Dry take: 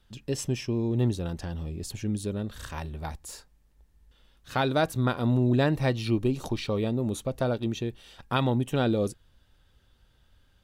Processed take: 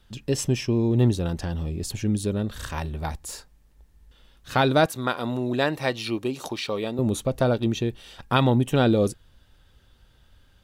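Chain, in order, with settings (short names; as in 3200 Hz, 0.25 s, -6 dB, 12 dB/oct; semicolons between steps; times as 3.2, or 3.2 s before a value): 4.86–6.99 HPF 600 Hz 6 dB/oct; gain +5.5 dB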